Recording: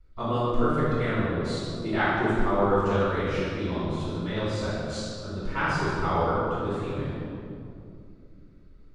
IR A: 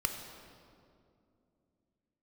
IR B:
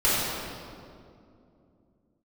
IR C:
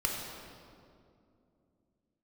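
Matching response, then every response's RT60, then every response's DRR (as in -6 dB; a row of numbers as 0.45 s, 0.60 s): B; 2.5 s, 2.5 s, 2.5 s; 3.0 dB, -12.0 dB, -2.0 dB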